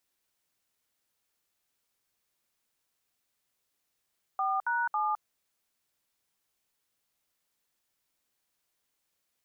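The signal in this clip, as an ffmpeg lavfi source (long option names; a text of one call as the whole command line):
ffmpeg -f lavfi -i "aevalsrc='0.0355*clip(min(mod(t,0.275),0.211-mod(t,0.275))/0.002,0,1)*(eq(floor(t/0.275),0)*(sin(2*PI*770*mod(t,0.275))+sin(2*PI*1209*mod(t,0.275)))+eq(floor(t/0.275),1)*(sin(2*PI*941*mod(t,0.275))+sin(2*PI*1477*mod(t,0.275)))+eq(floor(t/0.275),2)*(sin(2*PI*852*mod(t,0.275))+sin(2*PI*1209*mod(t,0.275))))':duration=0.825:sample_rate=44100" out.wav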